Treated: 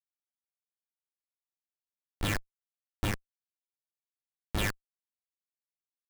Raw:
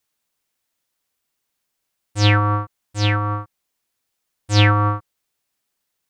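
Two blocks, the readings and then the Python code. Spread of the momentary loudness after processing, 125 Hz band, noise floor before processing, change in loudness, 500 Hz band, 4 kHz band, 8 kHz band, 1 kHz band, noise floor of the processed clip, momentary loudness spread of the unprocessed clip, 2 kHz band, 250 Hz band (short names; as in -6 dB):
7 LU, -21.0 dB, -77 dBFS, -16.0 dB, -15.5 dB, -16.0 dB, -7.5 dB, -21.5 dB, under -85 dBFS, 14 LU, -14.5 dB, -15.0 dB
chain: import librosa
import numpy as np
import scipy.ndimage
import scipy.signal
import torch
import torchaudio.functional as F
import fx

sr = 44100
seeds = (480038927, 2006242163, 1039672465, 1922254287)

y = fx.lower_of_two(x, sr, delay_ms=6.8)
y = scipy.signal.sosfilt(scipy.signal.ellip(3, 1.0, 70, [1600.0, 3900.0], 'bandpass', fs=sr, output='sos'), y)
y = fx.schmitt(y, sr, flips_db=-20.5)
y = F.gain(torch.from_numpy(y), 6.0).numpy()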